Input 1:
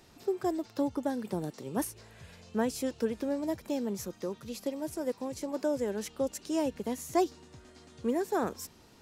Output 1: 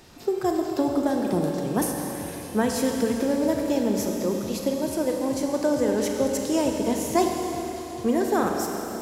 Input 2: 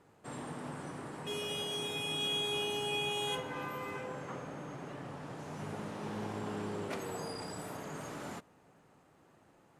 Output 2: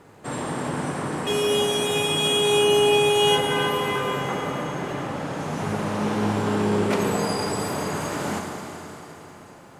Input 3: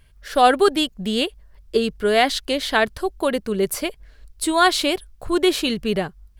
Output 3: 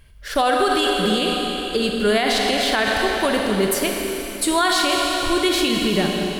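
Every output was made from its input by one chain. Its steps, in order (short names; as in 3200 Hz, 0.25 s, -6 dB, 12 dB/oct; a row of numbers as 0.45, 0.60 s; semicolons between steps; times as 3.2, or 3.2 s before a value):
dynamic EQ 450 Hz, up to -4 dB, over -30 dBFS, Q 0.86; Schroeder reverb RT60 3.8 s, combs from 30 ms, DRR 1.5 dB; maximiser +11.5 dB; normalise peaks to -9 dBFS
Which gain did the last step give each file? -3.5, +2.0, -8.0 dB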